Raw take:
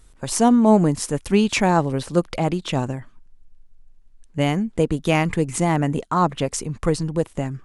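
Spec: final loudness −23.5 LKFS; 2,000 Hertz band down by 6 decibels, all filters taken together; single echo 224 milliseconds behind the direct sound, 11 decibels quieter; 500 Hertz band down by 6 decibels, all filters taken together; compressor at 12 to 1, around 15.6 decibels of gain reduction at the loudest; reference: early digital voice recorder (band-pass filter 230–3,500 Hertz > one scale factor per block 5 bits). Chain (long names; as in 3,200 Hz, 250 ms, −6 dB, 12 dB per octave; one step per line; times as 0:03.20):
parametric band 500 Hz −7 dB
parametric band 2,000 Hz −6.5 dB
downward compressor 12 to 1, threshold −29 dBFS
band-pass filter 230–3,500 Hz
single-tap delay 224 ms −11 dB
one scale factor per block 5 bits
level +14 dB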